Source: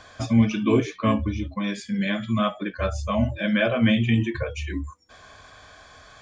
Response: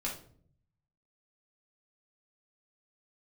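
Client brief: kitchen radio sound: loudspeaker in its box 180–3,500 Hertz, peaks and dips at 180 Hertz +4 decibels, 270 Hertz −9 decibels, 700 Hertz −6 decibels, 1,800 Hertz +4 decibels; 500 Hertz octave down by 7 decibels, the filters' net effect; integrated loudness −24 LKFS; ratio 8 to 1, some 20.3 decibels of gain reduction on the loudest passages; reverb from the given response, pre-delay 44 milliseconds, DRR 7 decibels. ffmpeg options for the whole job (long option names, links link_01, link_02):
-filter_complex "[0:a]equalizer=frequency=500:width_type=o:gain=-6,acompressor=threshold=-36dB:ratio=8,asplit=2[link_01][link_02];[1:a]atrim=start_sample=2205,adelay=44[link_03];[link_02][link_03]afir=irnorm=-1:irlink=0,volume=-9.5dB[link_04];[link_01][link_04]amix=inputs=2:normalize=0,highpass=180,equalizer=frequency=180:width_type=q:width=4:gain=4,equalizer=frequency=270:width_type=q:width=4:gain=-9,equalizer=frequency=700:width_type=q:width=4:gain=-6,equalizer=frequency=1800:width_type=q:width=4:gain=4,lowpass=frequency=3500:width=0.5412,lowpass=frequency=3500:width=1.3066,volume=17.5dB"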